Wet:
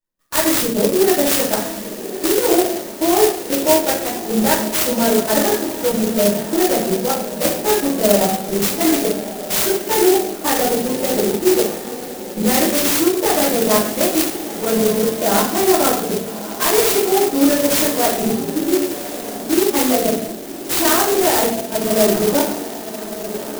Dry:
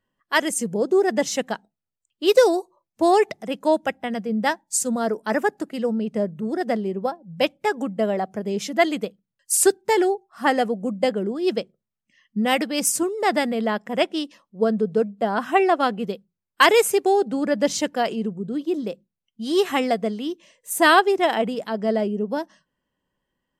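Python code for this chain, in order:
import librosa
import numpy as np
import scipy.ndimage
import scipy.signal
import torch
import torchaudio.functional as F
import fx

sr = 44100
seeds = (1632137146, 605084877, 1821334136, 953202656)

y = fx.high_shelf(x, sr, hz=2800.0, db=11.0)
y = fx.level_steps(y, sr, step_db=24)
y = fx.echo_diffused(y, sr, ms=1204, feedback_pct=51, wet_db=-11.5)
y = fx.room_shoebox(y, sr, seeds[0], volume_m3=130.0, walls='mixed', distance_m=2.6)
y = fx.clock_jitter(y, sr, seeds[1], jitter_ms=0.12)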